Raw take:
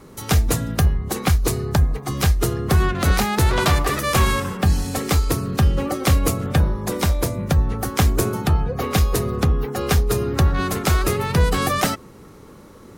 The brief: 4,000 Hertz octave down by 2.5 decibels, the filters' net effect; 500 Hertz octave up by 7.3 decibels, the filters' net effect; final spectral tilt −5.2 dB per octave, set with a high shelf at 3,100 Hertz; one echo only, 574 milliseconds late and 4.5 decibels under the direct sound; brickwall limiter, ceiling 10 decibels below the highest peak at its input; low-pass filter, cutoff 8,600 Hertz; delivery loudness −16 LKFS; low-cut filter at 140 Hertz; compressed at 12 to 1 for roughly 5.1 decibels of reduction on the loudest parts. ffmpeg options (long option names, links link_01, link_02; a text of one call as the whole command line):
ffmpeg -i in.wav -af "highpass=140,lowpass=8600,equalizer=frequency=500:width_type=o:gain=9,highshelf=frequency=3100:gain=6,equalizer=frequency=4000:width_type=o:gain=-8,acompressor=threshold=-18dB:ratio=12,alimiter=limit=-16dB:level=0:latency=1,aecho=1:1:574:0.596,volume=9dB" out.wav